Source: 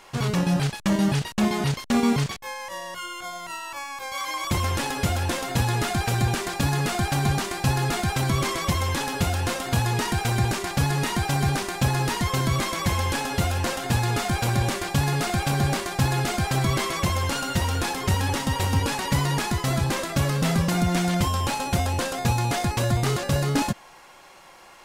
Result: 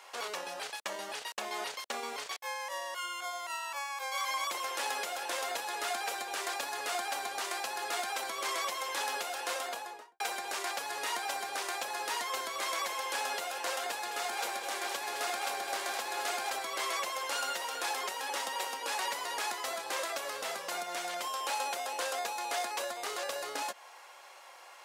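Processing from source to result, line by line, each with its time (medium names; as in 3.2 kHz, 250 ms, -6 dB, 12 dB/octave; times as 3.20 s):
9.51–10.20 s: studio fade out
13.90–16.50 s: two-band feedback delay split 640 Hz, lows 153 ms, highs 208 ms, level -7 dB
whole clip: compression, threshold -24 dBFS; high-pass 480 Hz 24 dB/octave; trim -3.5 dB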